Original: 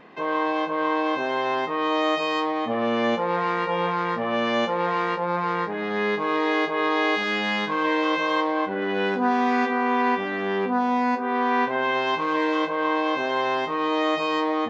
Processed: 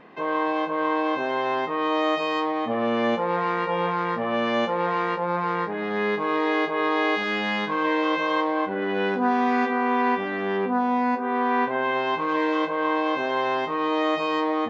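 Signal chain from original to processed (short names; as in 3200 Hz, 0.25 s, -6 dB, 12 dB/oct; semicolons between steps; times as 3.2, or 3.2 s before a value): high shelf 4300 Hz -7 dB, from 10.57 s -12 dB, from 12.29 s -6.5 dB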